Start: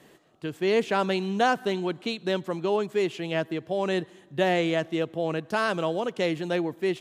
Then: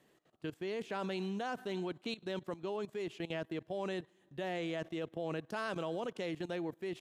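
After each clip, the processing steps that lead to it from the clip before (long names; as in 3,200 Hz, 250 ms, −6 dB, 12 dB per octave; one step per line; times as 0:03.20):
output level in coarse steps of 16 dB
level −5.5 dB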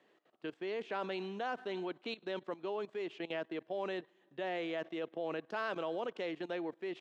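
band-pass filter 310–3,700 Hz
level +1.5 dB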